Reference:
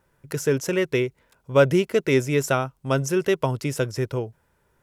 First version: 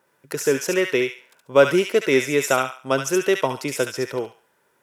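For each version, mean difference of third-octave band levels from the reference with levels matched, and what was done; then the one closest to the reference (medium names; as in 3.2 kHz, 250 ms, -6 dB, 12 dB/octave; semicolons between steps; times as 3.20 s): 5.5 dB: high-pass 270 Hz 12 dB/octave; on a send: feedback echo behind a high-pass 70 ms, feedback 31%, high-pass 1.4 kHz, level -3 dB; on the sum: trim +3 dB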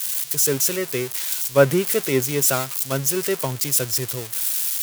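9.5 dB: zero-crossing glitches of -11 dBFS; three bands expanded up and down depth 70%; trim -2.5 dB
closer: first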